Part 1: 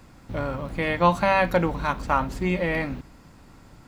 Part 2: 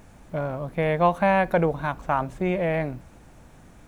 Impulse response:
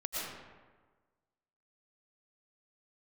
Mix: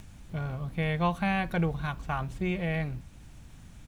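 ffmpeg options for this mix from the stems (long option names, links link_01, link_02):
-filter_complex "[0:a]volume=-15.5dB[link_01];[1:a]firequalizer=gain_entry='entry(100,0);entry(340,-11);entry(510,-14);entry(3100,3)':delay=0.05:min_phase=1,acompressor=mode=upward:threshold=-44dB:ratio=2.5,adelay=0.8,volume=1dB[link_02];[link_01][link_02]amix=inputs=2:normalize=0,highshelf=frequency=3500:gain=-6.5"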